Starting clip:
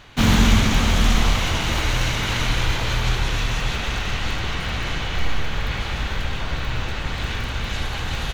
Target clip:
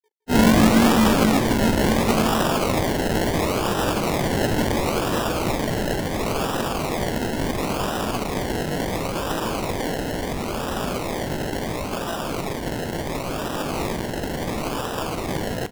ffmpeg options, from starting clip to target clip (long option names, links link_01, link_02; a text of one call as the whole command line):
ffmpeg -i in.wav -filter_complex "[0:a]highpass=frequency=200:width=0.5412,highpass=frequency=200:width=1.3066,afftfilt=real='re*gte(hypot(re,im),0.0178)':imag='im*gte(hypot(re,im),0.0178)':win_size=1024:overlap=0.75,equalizer=frequency=890:width=5.3:gain=-10.5,areverse,acompressor=mode=upward:threshold=-28dB:ratio=2.5,areverse,atempo=0.53,acrusher=samples=29:mix=1:aa=0.000001:lfo=1:lforange=17.4:lforate=0.72,asplit=2[link_01][link_02];[link_02]aecho=0:1:164:0.178[link_03];[link_01][link_03]amix=inputs=2:normalize=0,volume=5dB" out.wav